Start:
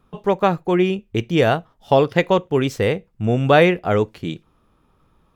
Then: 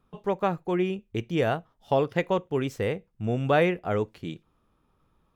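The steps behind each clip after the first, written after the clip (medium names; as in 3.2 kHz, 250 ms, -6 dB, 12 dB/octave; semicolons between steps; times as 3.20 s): dynamic bell 4.3 kHz, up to -5 dB, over -39 dBFS, Q 1.5; trim -8.5 dB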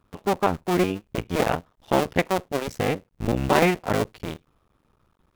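cycle switcher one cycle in 2, muted; trim +5.5 dB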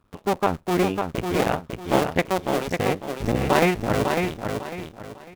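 feedback delay 550 ms, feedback 30%, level -5 dB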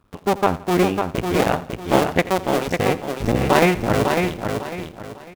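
feedback delay 84 ms, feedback 43%, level -17.5 dB; trim +3.5 dB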